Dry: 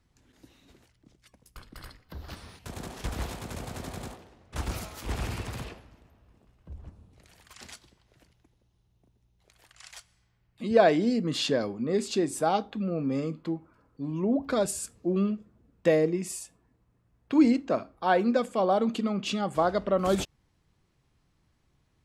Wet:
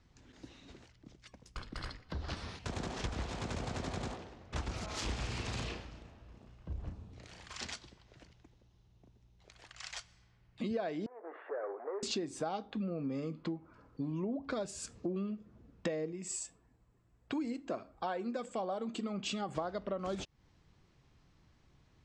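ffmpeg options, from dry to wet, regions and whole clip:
ffmpeg -i in.wav -filter_complex "[0:a]asettb=1/sr,asplit=3[link_01][link_02][link_03];[link_01]atrim=end=4.864[link_04];[link_02]atrim=start=4.86:end=7.65,asetpts=PTS-STARTPTS,afade=type=in:duration=0.004:curve=qsin,afade=type=out:start_time=2.786:duration=0.004:curve=qsin,asplit=2[link_05][link_06];[link_06]adelay=34,volume=-5.5dB[link_07];[link_05][link_07]amix=inputs=2:normalize=0,atrim=end_sample=123039,adynamicequalizer=threshold=0.00251:dfrequency=2300:dqfactor=0.7:tfrequency=2300:tqfactor=0.7:attack=5:release=100:ratio=0.375:range=3:mode=boostabove:tftype=highshelf[link_08];[link_03]atrim=start=7.646[link_09];[link_04][link_08]acrossfade=duration=0.004:curve1=hsin:curve2=qsin[link_10];[link_10][link_09]acrossfade=duration=0.004:curve1=qsin:curve2=hsin,asettb=1/sr,asplit=3[link_11][link_12][link_13];[link_11]atrim=end=11.064[link_14];[link_12]atrim=start=11.06:end=12.03,asetpts=PTS-STARTPTS,afade=type=in:duration=0.004:curve=qsin,afade=type=out:start_time=0.966:duration=0.004:curve=qsin,acompressor=threshold=-31dB:ratio=12:attack=3.2:release=140:knee=1:detection=peak,asoftclip=type=hard:threshold=-34.5dB,asuperpass=centerf=850:order=12:qfactor=0.58[link_15];[link_13]atrim=start=12.026[link_16];[link_14][link_15]acrossfade=duration=0.004:curve1=hsin:curve2=qsin[link_17];[link_17][link_16]acrossfade=duration=0.004:curve1=qsin:curve2=hsin,asettb=1/sr,asplit=3[link_18][link_19][link_20];[link_18]atrim=end=16.124[link_21];[link_19]atrim=start=16.12:end=19.49,asetpts=PTS-STARTPTS,afade=type=in:duration=0.004:curve=qsin,afade=type=out:start_time=3.366:duration=0.004:curve=qsin,equalizer=frequency=7800:width=5.3:gain=13.5,flanger=delay=1.2:depth=1.8:regen=65:speed=1.6:shape=sinusoidal[link_22];[link_20]atrim=start=19.486[link_23];[link_21][link_22]acrossfade=duration=0.004:curve1=hsin:curve2=qsin[link_24];[link_24][link_23]acrossfade=duration=0.004:curve1=qsin:curve2=hsin,lowpass=frequency=7000:width=0.5412,lowpass=frequency=7000:width=1.3066,acompressor=threshold=-38dB:ratio=8,volume=3.5dB" out.wav

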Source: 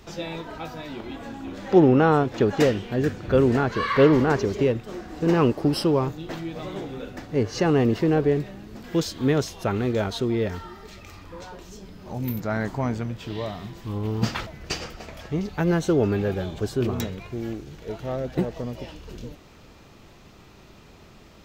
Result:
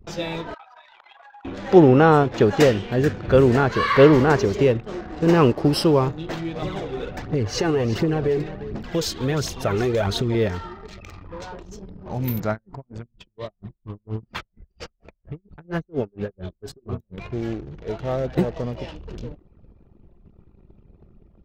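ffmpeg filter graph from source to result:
ffmpeg -i in.wav -filter_complex "[0:a]asettb=1/sr,asplit=3[link_01][link_02][link_03];[link_01]atrim=end=0.544[link_04];[link_02]atrim=start=0.54:end=1.45,asetpts=PTS-STARTPTS,afade=type=in:duration=0.004:curve=qsin,afade=type=out:start_time=0.906:duration=0.004:curve=qsin,highpass=frequency=790:width=0.5412,highpass=frequency=790:width=1.3066,acompressor=threshold=-42dB:ratio=10:attack=3.2:release=140:knee=1:detection=peak[link_05];[link_03]atrim=start=1.446[link_06];[link_04][link_05]acrossfade=duration=0.004:curve1=hsin:curve2=qsin[link_07];[link_07][link_06]acrossfade=duration=0.004:curve1=qsin:curve2=hsin,asettb=1/sr,asplit=3[link_08][link_09][link_10];[link_08]atrim=end=6.624[link_11];[link_09]atrim=start=6.62:end=10.35,asetpts=PTS-STARTPTS,afade=type=in:duration=0.004:curve=qsin,afade=type=out:start_time=3.726:duration=0.004:curve=qsin,aphaser=in_gain=1:out_gain=1:delay=2.9:decay=0.49:speed=1.4:type=triangular,acompressor=threshold=-21dB:ratio=6:attack=3.2:release=140:knee=1:detection=peak,aecho=1:1:351:0.188,atrim=end_sample=164493[link_12];[link_10]atrim=start=10.346[link_13];[link_11][link_12]acrossfade=duration=0.004:curve1=hsin:curve2=qsin[link_14];[link_14][link_13]acrossfade=duration=0.004:curve1=qsin:curve2=hsin,asettb=1/sr,asplit=3[link_15][link_16][link_17];[link_15]atrim=end=12.514[link_18];[link_16]atrim=start=12.51:end=17.18,asetpts=PTS-STARTPTS,afade=type=in:duration=0.004:curve=qsin,afade=type=out:start_time=4.666:duration=0.004:curve=qsin,bandreject=frequency=810:width=13,flanger=delay=0.1:depth=7.2:regen=61:speed=1.8:shape=sinusoidal,aeval=exprs='val(0)*pow(10,-29*(0.5-0.5*cos(2*PI*4.3*n/s))/20)':channel_layout=same[link_19];[link_17]atrim=start=17.176[link_20];[link_18][link_19]acrossfade=duration=0.004:curve1=hsin:curve2=qsin[link_21];[link_21][link_20]acrossfade=duration=0.004:curve1=qsin:curve2=hsin,anlmdn=0.1,equalizer=frequency=260:width=2.9:gain=-3.5,volume=4.5dB" out.wav

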